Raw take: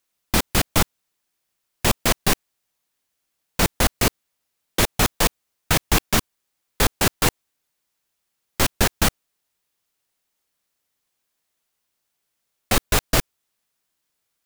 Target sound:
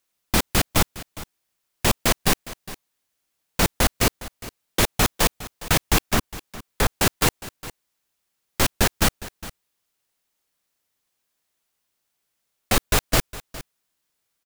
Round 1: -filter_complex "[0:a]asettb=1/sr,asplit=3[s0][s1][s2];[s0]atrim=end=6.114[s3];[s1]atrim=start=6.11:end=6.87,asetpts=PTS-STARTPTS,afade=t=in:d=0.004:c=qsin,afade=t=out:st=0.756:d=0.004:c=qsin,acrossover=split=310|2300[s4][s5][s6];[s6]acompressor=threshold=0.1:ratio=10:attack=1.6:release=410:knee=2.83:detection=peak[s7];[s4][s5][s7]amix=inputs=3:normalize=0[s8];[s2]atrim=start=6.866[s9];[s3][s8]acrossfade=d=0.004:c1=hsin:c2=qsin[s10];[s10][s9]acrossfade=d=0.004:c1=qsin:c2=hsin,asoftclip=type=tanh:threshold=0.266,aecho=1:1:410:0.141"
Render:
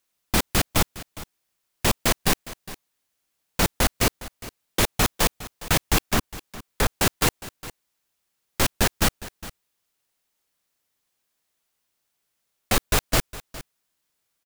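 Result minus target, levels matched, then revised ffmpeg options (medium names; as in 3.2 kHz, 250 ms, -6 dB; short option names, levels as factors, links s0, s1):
saturation: distortion +10 dB
-filter_complex "[0:a]asettb=1/sr,asplit=3[s0][s1][s2];[s0]atrim=end=6.114[s3];[s1]atrim=start=6.11:end=6.87,asetpts=PTS-STARTPTS,afade=t=in:d=0.004:c=qsin,afade=t=out:st=0.756:d=0.004:c=qsin,acrossover=split=310|2300[s4][s5][s6];[s6]acompressor=threshold=0.1:ratio=10:attack=1.6:release=410:knee=2.83:detection=peak[s7];[s4][s5][s7]amix=inputs=3:normalize=0[s8];[s2]atrim=start=6.866[s9];[s3][s8]acrossfade=d=0.004:c1=hsin:c2=qsin[s10];[s10][s9]acrossfade=d=0.004:c1=qsin:c2=hsin,asoftclip=type=tanh:threshold=0.562,aecho=1:1:410:0.141"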